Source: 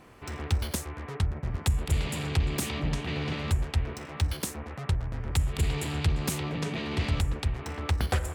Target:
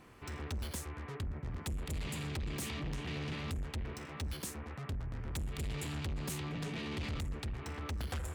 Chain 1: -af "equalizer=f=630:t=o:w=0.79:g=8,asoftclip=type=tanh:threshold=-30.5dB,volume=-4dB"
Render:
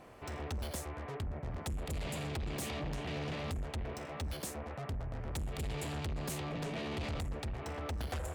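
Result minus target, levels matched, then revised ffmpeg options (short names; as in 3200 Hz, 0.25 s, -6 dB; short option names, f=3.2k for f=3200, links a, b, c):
500 Hz band +4.5 dB
-af "equalizer=f=630:t=o:w=0.79:g=-4,asoftclip=type=tanh:threshold=-30.5dB,volume=-4dB"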